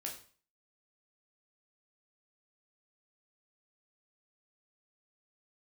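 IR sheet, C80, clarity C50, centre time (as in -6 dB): 12.5 dB, 8.0 dB, 23 ms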